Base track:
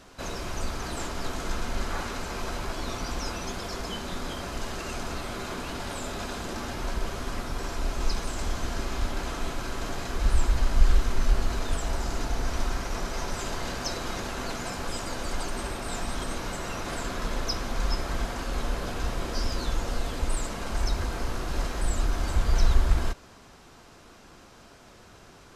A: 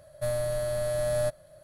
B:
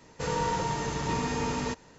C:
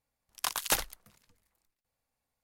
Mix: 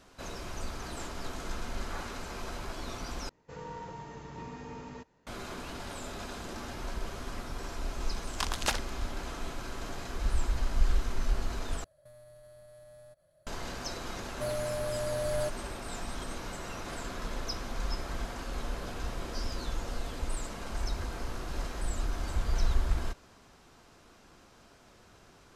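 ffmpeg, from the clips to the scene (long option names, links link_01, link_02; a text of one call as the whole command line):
ffmpeg -i bed.wav -i cue0.wav -i cue1.wav -i cue2.wav -filter_complex "[1:a]asplit=2[link_01][link_02];[0:a]volume=-6.5dB[link_03];[2:a]highshelf=frequency=3600:gain=-11[link_04];[3:a]lowpass=6500[link_05];[link_01]acompressor=threshold=-38dB:ratio=6:attack=3.2:release=140:knee=1:detection=peak[link_06];[link_03]asplit=3[link_07][link_08][link_09];[link_07]atrim=end=3.294[link_10];[link_04]atrim=end=1.98,asetpts=PTS-STARTPTS,volume=-13dB[link_11];[link_08]atrim=start=5.266:end=11.844[link_12];[link_06]atrim=end=1.63,asetpts=PTS-STARTPTS,volume=-13.5dB[link_13];[link_09]atrim=start=13.466[link_14];[link_05]atrim=end=2.43,asetpts=PTS-STARTPTS,afade=type=in:duration=0.004:curve=hsin,afade=type=out:start_time=2.426:duration=0.004:curve=hsin,adelay=7960[link_15];[link_02]atrim=end=1.63,asetpts=PTS-STARTPTS,volume=-5dB,afade=type=in:duration=0.004:curve=hsin,afade=type=out:start_time=1.626:duration=0.004:curve=hsin,adelay=14190[link_16];[link_10][link_11]acrossfade=duration=0.004:curve1=hsin:curve2=hsin[link_17];[link_17][link_12]acrossfade=duration=0.004:curve1=hsin:curve2=hsin[link_18];[link_18][link_13]acrossfade=duration=0.004:curve1=hsin:curve2=hsin[link_19];[link_19][link_14]acrossfade=duration=0.004:curve1=hsin:curve2=hsin[link_20];[link_20][link_15][link_16]amix=inputs=3:normalize=0" out.wav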